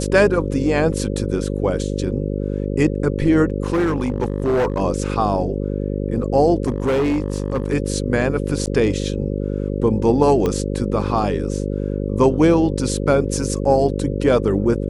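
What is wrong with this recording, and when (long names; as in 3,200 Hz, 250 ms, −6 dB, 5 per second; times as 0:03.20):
mains buzz 50 Hz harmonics 11 −23 dBFS
0:03.64–0:04.80: clipping −14.5 dBFS
0:06.66–0:07.74: clipping −15 dBFS
0:08.66–0:08.67: drop-out 9.1 ms
0:10.46: click −9 dBFS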